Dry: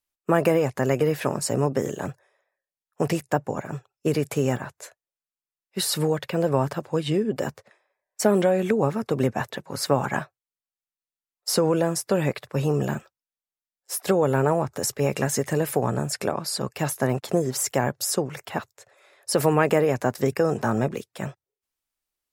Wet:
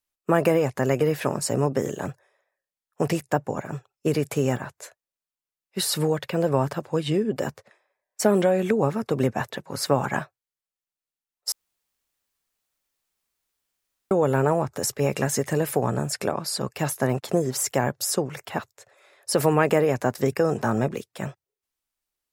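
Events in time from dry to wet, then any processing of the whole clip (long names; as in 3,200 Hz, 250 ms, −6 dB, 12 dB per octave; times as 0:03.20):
0:11.52–0:14.11: fill with room tone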